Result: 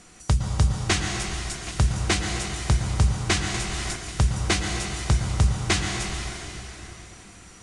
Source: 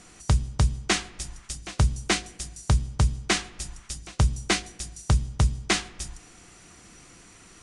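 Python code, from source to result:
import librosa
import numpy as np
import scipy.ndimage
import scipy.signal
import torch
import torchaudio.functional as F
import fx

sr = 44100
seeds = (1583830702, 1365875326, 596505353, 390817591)

y = fx.rev_plate(x, sr, seeds[0], rt60_s=3.7, hf_ratio=0.85, predelay_ms=100, drr_db=1.5)
y = fx.band_squash(y, sr, depth_pct=100, at=(3.54, 3.96))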